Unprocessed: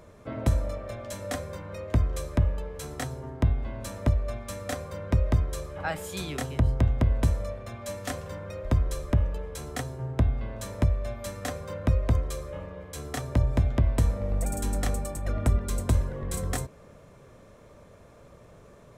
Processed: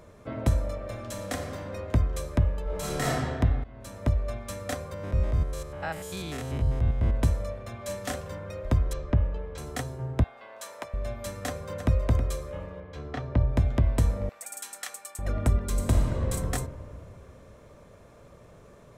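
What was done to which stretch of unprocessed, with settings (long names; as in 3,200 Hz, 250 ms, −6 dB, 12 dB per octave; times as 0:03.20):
0:00.76–0:01.66: thrown reverb, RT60 2.2 s, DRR 4 dB
0:02.63–0:03.12: thrown reverb, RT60 1.8 s, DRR −8 dB
0:03.64–0:04.19: fade in, from −17 dB
0:04.94–0:07.15: spectrum averaged block by block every 100 ms
0:07.76–0:08.21: double-tracking delay 36 ms −7 dB
0:08.93–0:09.58: high-frequency loss of the air 180 metres
0:10.24–0:10.94: Chebyshev high-pass filter 790 Hz
0:11.46–0:12.04: delay throw 320 ms, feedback 15%, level −9.5 dB
0:12.80–0:13.57: high-frequency loss of the air 250 metres
0:14.29–0:15.19: high-pass filter 1,400 Hz
0:15.71–0:16.20: thrown reverb, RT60 2.8 s, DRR 0.5 dB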